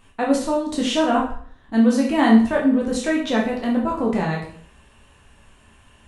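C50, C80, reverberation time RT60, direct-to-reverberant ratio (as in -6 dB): 6.0 dB, 9.5 dB, 0.55 s, -3.0 dB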